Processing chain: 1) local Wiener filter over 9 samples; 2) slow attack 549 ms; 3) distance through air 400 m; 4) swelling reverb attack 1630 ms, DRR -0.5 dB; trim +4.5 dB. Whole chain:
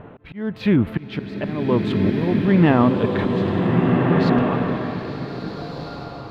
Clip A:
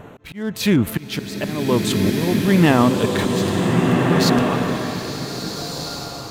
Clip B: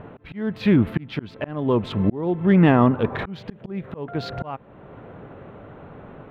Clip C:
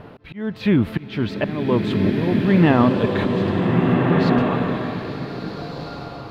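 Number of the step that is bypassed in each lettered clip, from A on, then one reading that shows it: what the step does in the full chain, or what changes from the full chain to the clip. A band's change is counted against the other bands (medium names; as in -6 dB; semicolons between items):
3, 4 kHz band +10.0 dB; 4, momentary loudness spread change +3 LU; 1, 4 kHz band +2.0 dB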